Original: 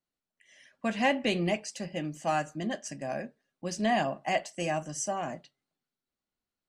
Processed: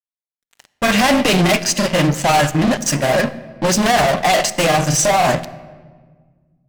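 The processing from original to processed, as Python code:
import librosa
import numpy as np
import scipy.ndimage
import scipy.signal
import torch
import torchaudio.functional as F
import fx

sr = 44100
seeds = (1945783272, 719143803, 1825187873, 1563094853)

y = fx.peak_eq(x, sr, hz=280.0, db=-5.0, octaves=1.1)
y = fx.fuzz(y, sr, gain_db=44.0, gate_db=-49.0)
y = fx.granulator(y, sr, seeds[0], grain_ms=100.0, per_s=20.0, spray_ms=23.0, spread_st=0)
y = fx.room_shoebox(y, sr, seeds[1], volume_m3=1700.0, walls='mixed', distance_m=0.39)
y = y * librosa.db_to_amplitude(2.0)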